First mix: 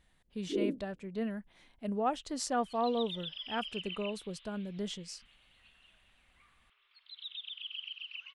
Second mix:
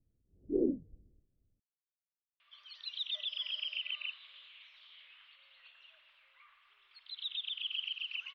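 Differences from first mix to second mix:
speech: muted; first sound: remove high-pass 250 Hz 6 dB/octave; second sound +4.5 dB

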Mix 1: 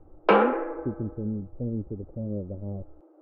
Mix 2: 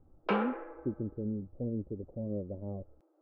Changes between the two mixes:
background -12.0 dB; master: add tilt EQ +2 dB/octave

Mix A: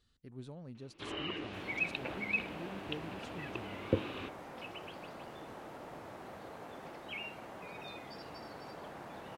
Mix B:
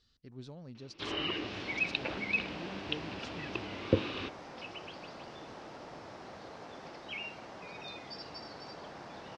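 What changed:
first sound +3.5 dB; master: add resonant low-pass 5.3 kHz, resonance Q 3

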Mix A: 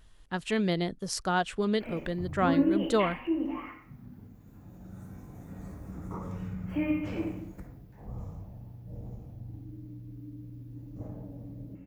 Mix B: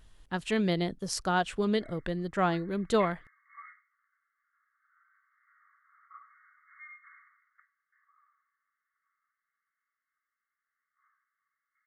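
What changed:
background: add brick-wall FIR band-pass 1.1–2.2 kHz; reverb: off

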